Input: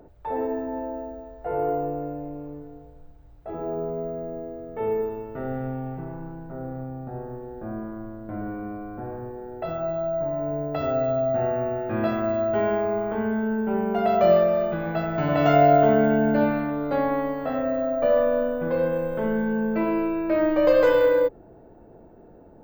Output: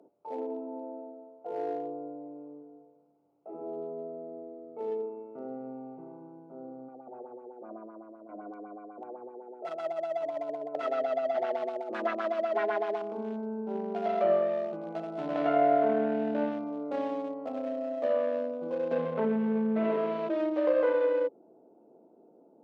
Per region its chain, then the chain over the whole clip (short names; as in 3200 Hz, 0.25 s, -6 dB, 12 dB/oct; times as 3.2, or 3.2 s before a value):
6.88–13.02 tilt shelf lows -9.5 dB, about 690 Hz + LFO low-pass sine 7.9 Hz 410–2300 Hz
18.91–20.29 comb 4.5 ms, depth 95% + flutter echo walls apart 11.6 m, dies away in 0.97 s + fast leveller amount 70%
whole clip: Wiener smoothing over 25 samples; treble ducked by the level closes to 2300 Hz, closed at -15 dBFS; HPF 230 Hz 24 dB/oct; gain -7 dB